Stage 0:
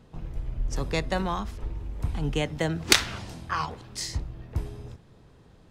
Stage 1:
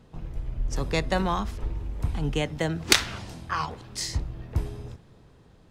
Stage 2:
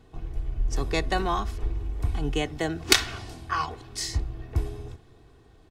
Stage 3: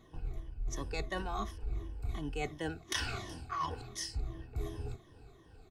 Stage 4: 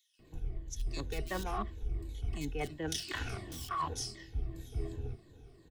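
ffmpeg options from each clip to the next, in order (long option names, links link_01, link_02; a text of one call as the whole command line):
ffmpeg -i in.wav -af "dynaudnorm=framelen=200:gausssize=11:maxgain=4dB" out.wav
ffmpeg -i in.wav -af "aecho=1:1:2.7:0.56,volume=-1dB" out.wav
ffmpeg -i in.wav -af "afftfilt=real='re*pow(10,13/40*sin(2*PI*(1.2*log(max(b,1)*sr/1024/100)/log(2)-(-2.8)*(pts-256)/sr)))':imag='im*pow(10,13/40*sin(2*PI*(1.2*log(max(b,1)*sr/1024/100)/log(2)-(-2.8)*(pts-256)/sr)))':win_size=1024:overlap=0.75,areverse,acompressor=threshold=-28dB:ratio=16,areverse,volume=-4.5dB" out.wav
ffmpeg -i in.wav -filter_complex "[0:a]acrossover=split=160|740|1500[link_01][link_02][link_03][link_04];[link_03]acrusher=bits=6:mix=0:aa=0.000001[link_05];[link_01][link_02][link_05][link_04]amix=inputs=4:normalize=0,acrossover=split=2800[link_06][link_07];[link_06]adelay=190[link_08];[link_08][link_07]amix=inputs=2:normalize=0,volume=1dB" out.wav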